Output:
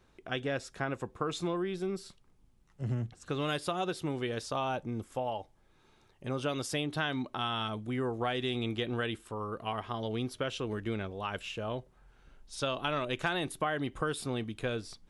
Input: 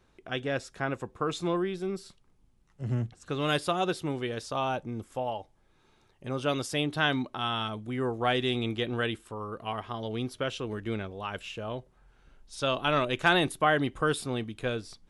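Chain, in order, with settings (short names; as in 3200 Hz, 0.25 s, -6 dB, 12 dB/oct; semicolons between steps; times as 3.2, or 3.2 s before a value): compressor 5:1, threshold -29 dBFS, peak gain reduction 10.5 dB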